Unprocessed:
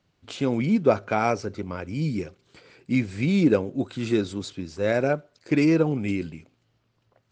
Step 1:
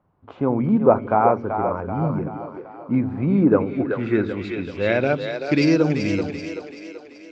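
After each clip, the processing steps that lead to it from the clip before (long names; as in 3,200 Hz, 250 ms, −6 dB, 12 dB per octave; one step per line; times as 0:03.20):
echo with a time of its own for lows and highs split 320 Hz, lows 89 ms, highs 383 ms, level −7 dB
low-pass filter sweep 1,000 Hz → 5,500 Hz, 0:03.38–0:05.81
level +2 dB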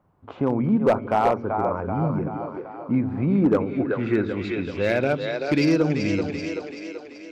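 in parallel at 0 dB: downward compressor 16 to 1, threshold −26 dBFS, peak gain reduction 18 dB
on the sum: hard clipping −8 dBFS, distortion −19 dB
level −4 dB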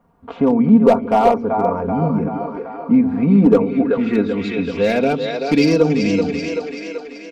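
dynamic equaliser 1,600 Hz, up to −7 dB, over −42 dBFS, Q 1.6
comb filter 4.3 ms, depth 81%
level +5 dB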